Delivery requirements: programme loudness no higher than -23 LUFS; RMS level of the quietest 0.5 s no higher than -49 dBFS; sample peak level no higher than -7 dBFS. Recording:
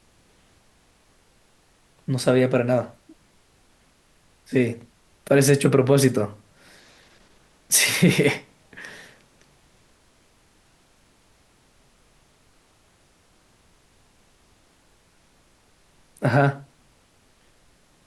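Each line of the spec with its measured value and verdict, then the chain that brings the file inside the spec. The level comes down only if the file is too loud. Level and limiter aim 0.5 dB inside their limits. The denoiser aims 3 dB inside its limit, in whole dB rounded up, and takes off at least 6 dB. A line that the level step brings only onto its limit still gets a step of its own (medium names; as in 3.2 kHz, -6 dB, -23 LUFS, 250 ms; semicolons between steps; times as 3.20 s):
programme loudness -20.5 LUFS: fail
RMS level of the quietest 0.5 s -60 dBFS: pass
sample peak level -5.5 dBFS: fail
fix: trim -3 dB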